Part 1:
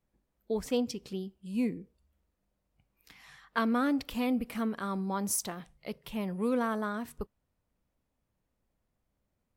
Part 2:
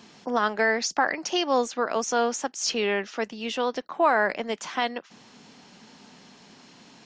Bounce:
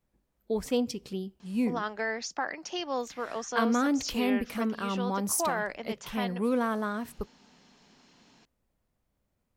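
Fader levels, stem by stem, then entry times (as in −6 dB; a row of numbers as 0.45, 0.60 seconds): +2.0, −9.0 decibels; 0.00, 1.40 seconds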